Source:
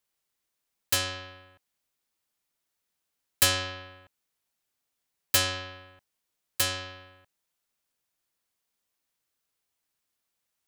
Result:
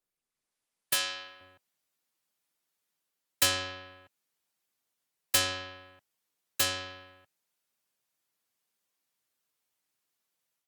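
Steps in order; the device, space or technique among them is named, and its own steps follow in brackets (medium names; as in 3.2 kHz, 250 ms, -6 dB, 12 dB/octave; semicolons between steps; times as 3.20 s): 0.93–1.41 s: high-pass 840 Hz 6 dB/octave; video call (high-pass 110 Hz 12 dB/octave; level rider gain up to 8 dB; trim -8.5 dB; Opus 32 kbps 48 kHz)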